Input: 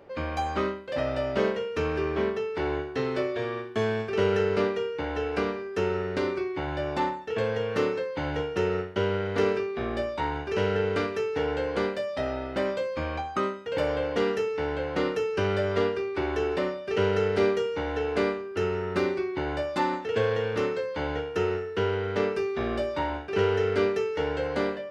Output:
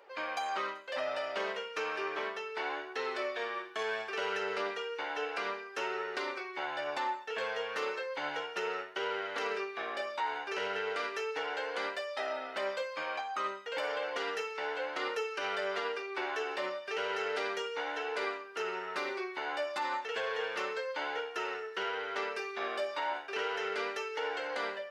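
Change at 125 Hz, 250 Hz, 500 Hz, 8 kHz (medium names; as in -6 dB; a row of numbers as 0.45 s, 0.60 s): under -30 dB, -17.5 dB, -10.5 dB, no reading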